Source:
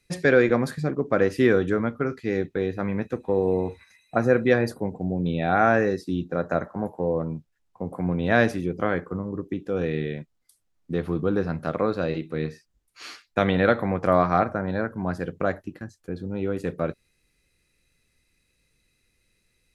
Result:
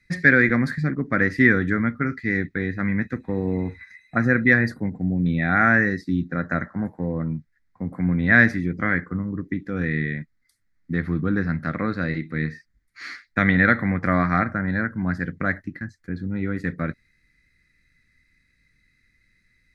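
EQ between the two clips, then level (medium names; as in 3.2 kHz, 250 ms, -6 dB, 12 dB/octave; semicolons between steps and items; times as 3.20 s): FFT filter 270 Hz 0 dB, 410 Hz -12 dB, 940 Hz -11 dB, 2 kHz +10 dB, 2.8 kHz -14 dB, 4.2 kHz -4 dB, 9.4 kHz -14 dB; +4.5 dB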